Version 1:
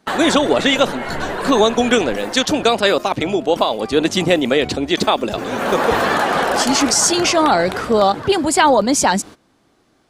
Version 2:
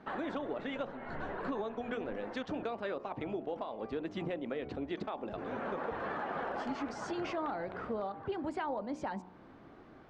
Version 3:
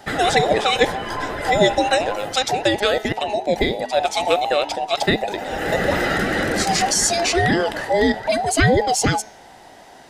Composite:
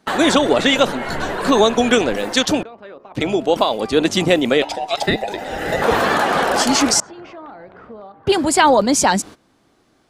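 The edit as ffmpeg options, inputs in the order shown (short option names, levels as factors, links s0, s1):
-filter_complex "[1:a]asplit=2[s0][s1];[0:a]asplit=4[s2][s3][s4][s5];[s2]atrim=end=2.632[s6];[s0]atrim=start=2.628:end=3.152[s7];[s3]atrim=start=3.148:end=4.622[s8];[2:a]atrim=start=4.618:end=5.822[s9];[s4]atrim=start=5.818:end=7.002[s10];[s1]atrim=start=6.998:end=8.272[s11];[s5]atrim=start=8.268[s12];[s6][s7]acrossfade=d=0.004:c1=hsin:c2=hsin[s13];[s13][s8]acrossfade=d=0.004:c1=hsin:c2=hsin[s14];[s14][s9]acrossfade=d=0.004:c1=hsin:c2=hsin[s15];[s15][s10]acrossfade=d=0.004:c1=hsin:c2=hsin[s16];[s16][s11]acrossfade=d=0.004:c1=hsin:c2=hsin[s17];[s17][s12]acrossfade=d=0.004:c1=hsin:c2=hsin"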